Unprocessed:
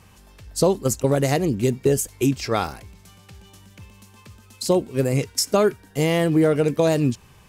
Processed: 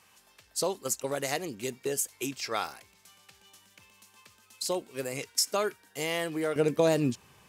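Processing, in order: high-pass 1.1 kHz 6 dB/octave, from 6.56 s 230 Hz; trim -4 dB

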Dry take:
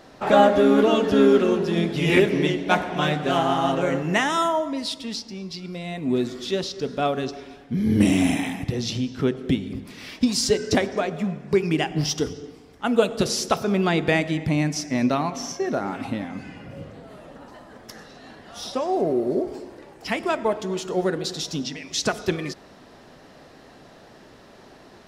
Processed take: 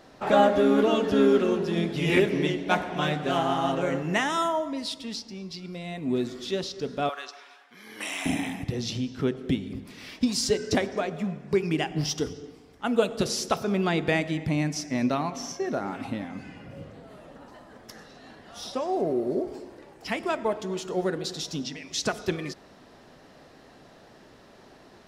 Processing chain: 7.09–8.26 s: resonant high-pass 1.1 kHz, resonance Q 1.6; trim -4 dB

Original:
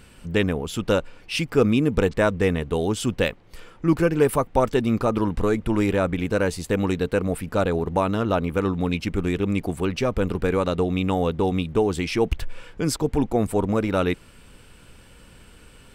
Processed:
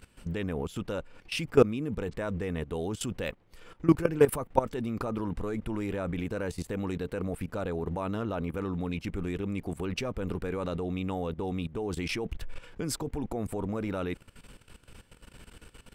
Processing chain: dynamic bell 4.6 kHz, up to -3 dB, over -46 dBFS, Q 0.78; level held to a coarse grid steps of 16 dB

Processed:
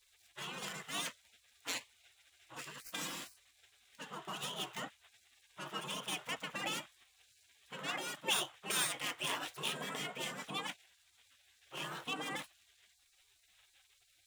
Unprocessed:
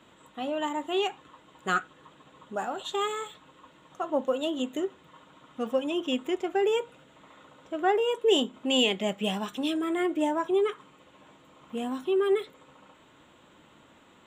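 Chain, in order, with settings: median filter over 9 samples; resonant low shelf 110 Hz -12.5 dB, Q 3; spectral gate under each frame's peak -25 dB weak; trim +5 dB

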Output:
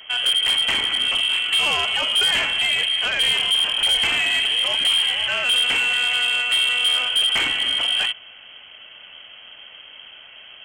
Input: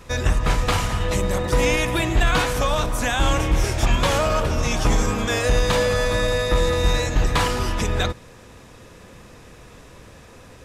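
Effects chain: frequency inversion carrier 3.2 kHz; bass shelf 330 Hz -4 dB; saturation -16 dBFS, distortion -12 dB; trim +1.5 dB

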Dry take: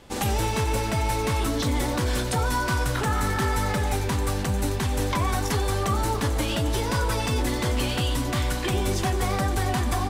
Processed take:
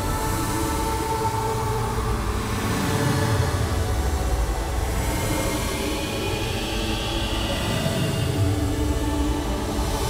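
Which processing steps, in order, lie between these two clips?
echo that smears into a reverb 913 ms, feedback 69%, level -8 dB; Paulstretch 14×, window 0.10 s, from 6.02 s

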